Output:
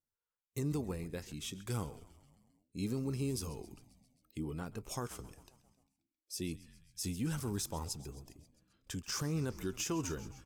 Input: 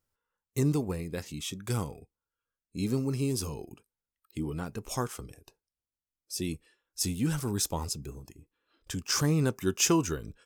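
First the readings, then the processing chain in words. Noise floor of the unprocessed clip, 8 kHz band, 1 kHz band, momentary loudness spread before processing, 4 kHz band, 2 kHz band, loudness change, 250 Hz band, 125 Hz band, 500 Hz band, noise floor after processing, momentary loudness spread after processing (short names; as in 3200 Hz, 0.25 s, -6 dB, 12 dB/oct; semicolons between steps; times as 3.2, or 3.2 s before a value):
under -85 dBFS, -9.5 dB, -8.5 dB, 18 LU, -9.0 dB, -8.5 dB, -8.5 dB, -8.0 dB, -7.5 dB, -8.5 dB, under -85 dBFS, 14 LU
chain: frequency-shifting echo 0.133 s, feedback 63%, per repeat -66 Hz, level -19 dB; spectral noise reduction 8 dB; limiter -21.5 dBFS, peak gain reduction 11 dB; gain -6 dB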